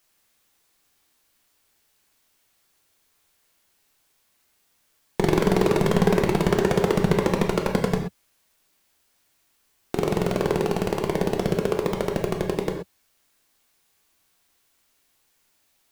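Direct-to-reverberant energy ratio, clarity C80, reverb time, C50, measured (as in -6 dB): 2.0 dB, 8.0 dB, not exponential, 5.5 dB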